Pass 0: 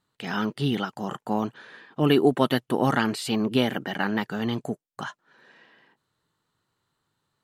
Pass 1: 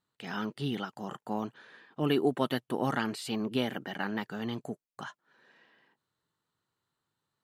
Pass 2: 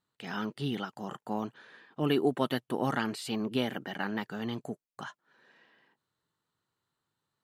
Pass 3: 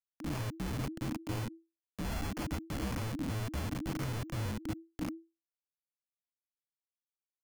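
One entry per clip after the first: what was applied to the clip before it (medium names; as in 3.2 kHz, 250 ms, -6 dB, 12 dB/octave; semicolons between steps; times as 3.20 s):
bass shelf 60 Hz -6.5 dB; trim -7.5 dB
no audible change
sample-rate reducer 4.1 kHz, jitter 0%; Schmitt trigger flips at -37 dBFS; frequency shift -330 Hz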